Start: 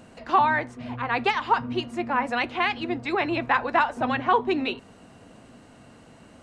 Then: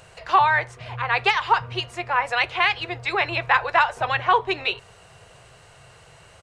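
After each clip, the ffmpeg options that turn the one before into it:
ffmpeg -i in.wav -af "firequalizer=gain_entry='entry(140,0);entry(240,-29);entry(390,-4);entry(1100,0);entry(2400,3)':delay=0.05:min_phase=1,volume=3.5dB" out.wav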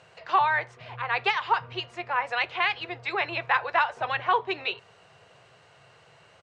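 ffmpeg -i in.wav -af "highpass=140,lowpass=5100,volume=-5dB" out.wav

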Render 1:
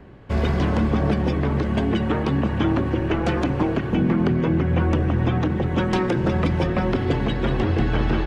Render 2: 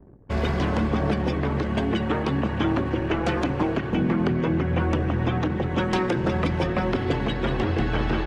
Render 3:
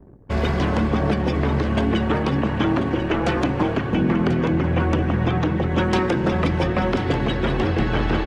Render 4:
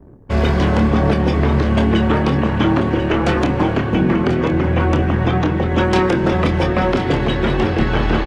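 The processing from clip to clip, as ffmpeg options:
ffmpeg -i in.wav -af "anlmdn=0.158,lowshelf=frequency=340:gain=-4.5" out.wav
ffmpeg -i in.wav -af "aecho=1:1:1039:0.299,volume=3dB" out.wav
ffmpeg -i in.wav -filter_complex "[0:a]asplit=2[link_01][link_02];[link_02]adelay=27,volume=-7.5dB[link_03];[link_01][link_03]amix=inputs=2:normalize=0,volume=3.5dB" out.wav

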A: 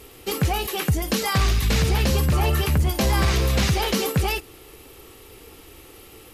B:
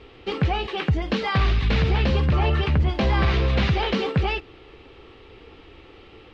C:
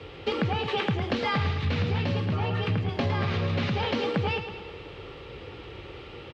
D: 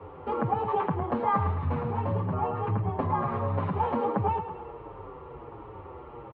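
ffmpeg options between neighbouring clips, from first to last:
ffmpeg -i in.wav -af "lowpass=frequency=3700:width=0.5412,lowpass=frequency=3700:width=1.3066" out.wav
ffmpeg -i in.wav -af "acompressor=threshold=-28dB:ratio=10,afreqshift=32,aecho=1:1:109|218|327|436|545|654|763:0.335|0.191|0.109|0.062|0.0354|0.0202|0.0115,volume=4dB" out.wav
ffmpeg -i in.wav -filter_complex "[0:a]lowpass=frequency=1000:width_type=q:width=4,asplit=2[link_01][link_02];[link_02]adelay=7.2,afreqshift=-1.4[link_03];[link_01][link_03]amix=inputs=2:normalize=1" out.wav

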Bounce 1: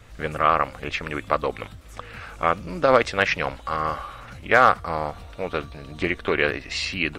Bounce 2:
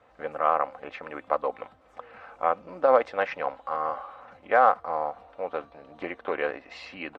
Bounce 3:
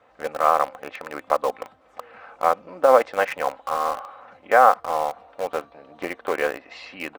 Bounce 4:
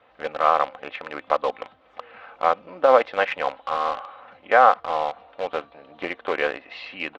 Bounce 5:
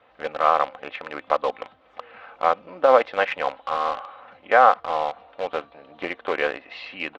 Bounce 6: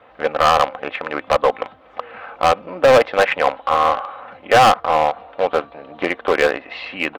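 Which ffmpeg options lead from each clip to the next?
ffmpeg -i in.wav -af "bandpass=frequency=740:width_type=q:width=1.6:csg=0,aecho=1:1:3.9:0.32" out.wav
ffmpeg -i in.wav -filter_complex "[0:a]lowshelf=frequency=99:gain=-10,asplit=2[link_01][link_02];[link_02]acrusher=bits=4:mix=0:aa=0.000001,volume=-9dB[link_03];[link_01][link_03]amix=inputs=2:normalize=0,volume=2.5dB" out.wav
ffmpeg -i in.wav -af "lowpass=frequency=3400:width_type=q:width=2,volume=-1dB" out.wav
ffmpeg -i in.wav -af anull out.wav
ffmpeg -i in.wav -filter_complex "[0:a]asplit=2[link_01][link_02];[link_02]adynamicsmooth=sensitivity=0.5:basefreq=3300,volume=-1dB[link_03];[link_01][link_03]amix=inputs=2:normalize=0,volume=12dB,asoftclip=hard,volume=-12dB,volume=4.5dB" out.wav

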